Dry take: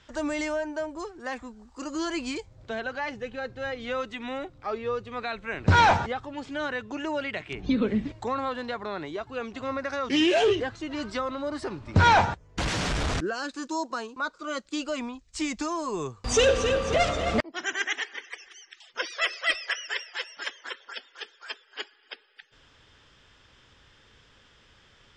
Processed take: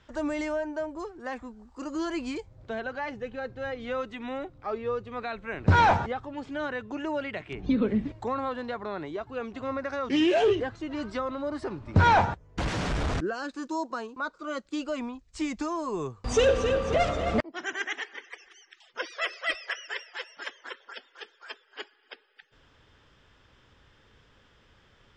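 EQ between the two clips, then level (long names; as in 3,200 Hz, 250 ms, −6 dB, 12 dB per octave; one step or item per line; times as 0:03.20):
high-shelf EQ 2,200 Hz −8.5 dB
0.0 dB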